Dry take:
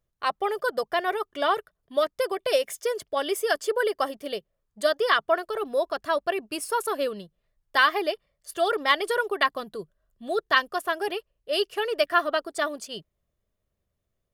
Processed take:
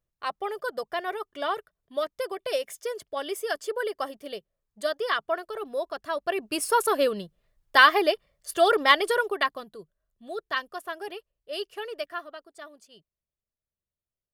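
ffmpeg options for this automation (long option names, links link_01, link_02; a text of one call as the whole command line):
ffmpeg -i in.wav -af "volume=4dB,afade=type=in:start_time=6.16:duration=0.48:silence=0.354813,afade=type=out:start_time=8.79:duration=0.92:silence=0.251189,afade=type=out:start_time=11.85:duration=0.46:silence=0.354813" out.wav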